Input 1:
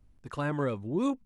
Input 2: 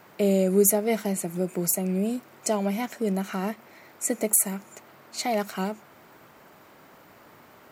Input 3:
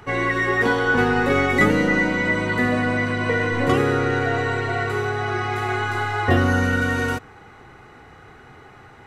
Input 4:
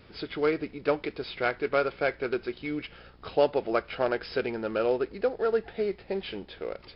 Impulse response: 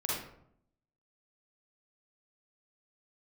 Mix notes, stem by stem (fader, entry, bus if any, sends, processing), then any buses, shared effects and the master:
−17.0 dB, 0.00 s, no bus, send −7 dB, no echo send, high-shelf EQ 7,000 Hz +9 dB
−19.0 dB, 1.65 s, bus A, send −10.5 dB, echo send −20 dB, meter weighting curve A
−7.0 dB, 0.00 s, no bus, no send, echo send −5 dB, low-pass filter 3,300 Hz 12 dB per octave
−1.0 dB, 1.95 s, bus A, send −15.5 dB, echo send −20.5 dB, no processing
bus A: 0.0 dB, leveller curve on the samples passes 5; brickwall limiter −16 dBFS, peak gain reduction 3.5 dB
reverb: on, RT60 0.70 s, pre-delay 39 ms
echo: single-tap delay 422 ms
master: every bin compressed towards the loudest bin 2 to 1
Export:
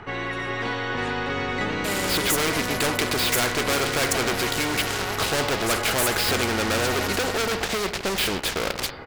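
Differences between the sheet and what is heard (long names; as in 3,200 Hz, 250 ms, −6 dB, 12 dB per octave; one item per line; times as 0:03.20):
stem 1: send off
stem 4: send −15.5 dB → −9.5 dB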